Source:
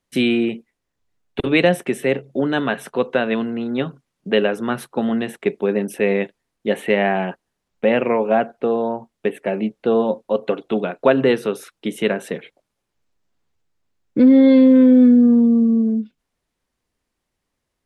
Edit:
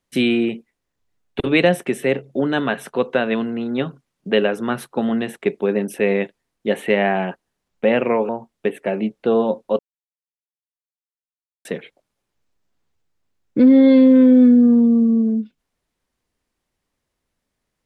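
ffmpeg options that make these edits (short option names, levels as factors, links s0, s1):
-filter_complex "[0:a]asplit=4[s0][s1][s2][s3];[s0]atrim=end=8.292[s4];[s1]atrim=start=8.888:end=10.39,asetpts=PTS-STARTPTS,afade=t=out:st=1.498:d=0.004:c=hsin[s5];[s2]atrim=start=10.39:end=12.25,asetpts=PTS-STARTPTS,volume=0[s6];[s3]atrim=start=12.25,asetpts=PTS-STARTPTS,afade=t=in:d=0.004:c=hsin[s7];[s5][s6][s7]concat=n=3:v=0:a=1[s8];[s4][s8]acrossfade=d=0.004:c1=hsin:c2=hsin"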